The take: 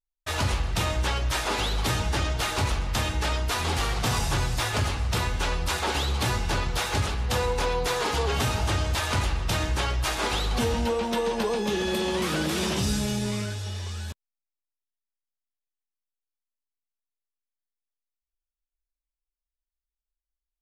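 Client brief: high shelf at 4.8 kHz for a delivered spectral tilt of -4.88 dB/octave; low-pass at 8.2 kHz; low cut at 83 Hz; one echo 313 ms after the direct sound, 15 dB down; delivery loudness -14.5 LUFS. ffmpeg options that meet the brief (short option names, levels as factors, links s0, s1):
-af "highpass=83,lowpass=8200,highshelf=f=4800:g=-8,aecho=1:1:313:0.178,volume=5.01"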